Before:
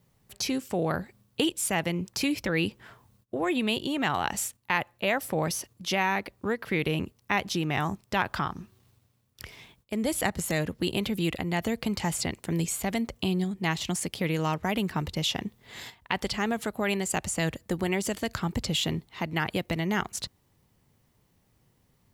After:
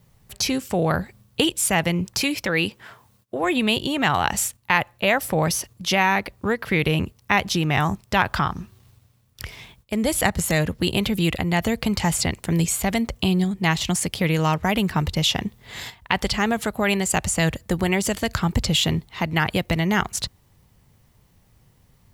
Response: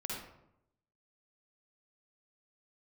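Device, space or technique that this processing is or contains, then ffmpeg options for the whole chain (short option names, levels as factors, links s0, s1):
low shelf boost with a cut just above: -filter_complex "[0:a]lowshelf=f=94:g=7.5,equalizer=f=310:t=o:w=1.2:g=-4,asettb=1/sr,asplit=3[s0][s1][s2];[s0]atrim=end=2.204[s3];[s1]atrim=start=2.2:end=3.44,asetpts=PTS-STARTPTS,afade=t=in:d=0.004:c=qsin,afade=t=out:st=1.236:d=0.004:c=qsin,highpass=f=270:p=1[s4];[s2]atrim=start=3.436[s5];[s3][s4]acrossfade=d=0.004:c1=hsin:c2=qsin[s6];[s6][s5]acrossfade=d=0.004:c1=qsin:c2=hsin,volume=2.37"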